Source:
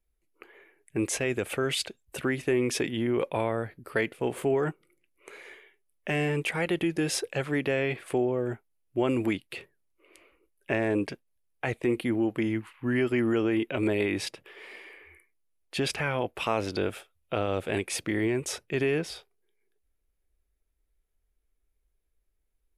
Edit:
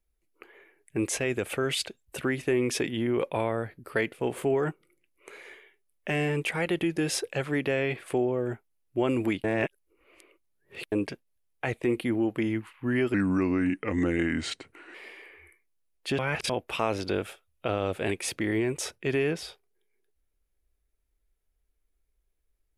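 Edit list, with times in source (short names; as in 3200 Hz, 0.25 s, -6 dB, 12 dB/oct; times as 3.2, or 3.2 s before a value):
9.44–10.92 reverse
13.14–14.62 speed 82%
15.86–16.17 reverse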